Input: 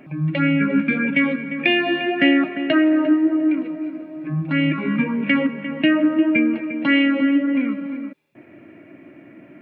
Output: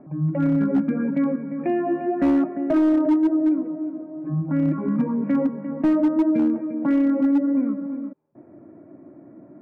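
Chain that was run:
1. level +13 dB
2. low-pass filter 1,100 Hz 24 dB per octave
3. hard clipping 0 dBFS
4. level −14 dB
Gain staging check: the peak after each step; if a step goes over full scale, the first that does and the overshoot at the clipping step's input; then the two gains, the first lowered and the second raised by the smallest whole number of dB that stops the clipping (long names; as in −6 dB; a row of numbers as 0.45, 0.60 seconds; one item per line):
+9.0, +5.5, 0.0, −14.0 dBFS
step 1, 5.5 dB
step 1 +7 dB, step 4 −8 dB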